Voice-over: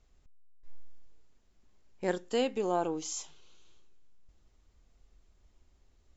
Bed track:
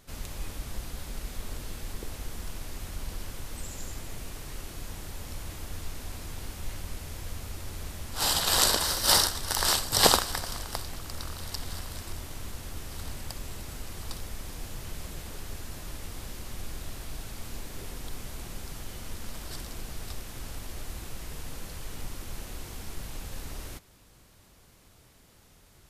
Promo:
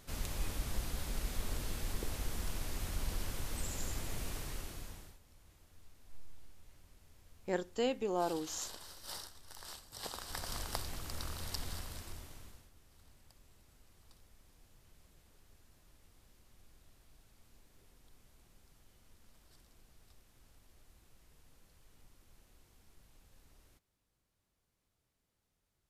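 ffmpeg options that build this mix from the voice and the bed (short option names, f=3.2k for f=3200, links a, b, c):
-filter_complex "[0:a]adelay=5450,volume=-4dB[a];[1:a]volume=19dB,afade=t=out:st=4.35:d=0.84:silence=0.0668344,afade=t=in:st=10.14:d=0.44:silence=0.1,afade=t=out:st=11.6:d=1.1:silence=0.0944061[b];[a][b]amix=inputs=2:normalize=0"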